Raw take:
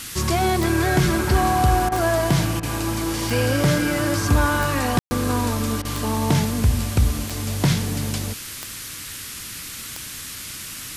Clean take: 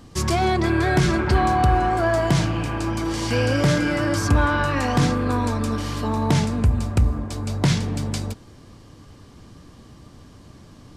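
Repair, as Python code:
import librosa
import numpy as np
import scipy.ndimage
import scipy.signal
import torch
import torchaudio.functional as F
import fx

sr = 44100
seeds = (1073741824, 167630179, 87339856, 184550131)

y = fx.fix_declick_ar(x, sr, threshold=10.0)
y = fx.fix_ambience(y, sr, seeds[0], print_start_s=8.86, print_end_s=9.36, start_s=4.99, end_s=5.11)
y = fx.fix_interpolate(y, sr, at_s=(1.89, 2.6, 5.82), length_ms=28.0)
y = fx.noise_reduce(y, sr, print_start_s=8.86, print_end_s=9.36, reduce_db=11.0)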